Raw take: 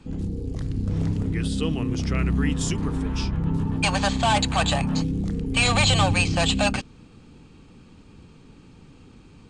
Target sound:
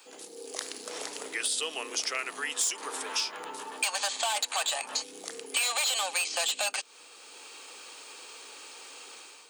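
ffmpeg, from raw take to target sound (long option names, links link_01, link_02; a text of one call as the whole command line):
ffmpeg -i in.wav -af "aemphasis=mode=production:type=riaa,dynaudnorm=framelen=340:gausssize=3:maxgain=9dB,asoftclip=type=hard:threshold=-10.5dB,acompressor=threshold=-27dB:ratio=6,highpass=frequency=460:width=0.5412,highpass=frequency=460:width=1.3066" out.wav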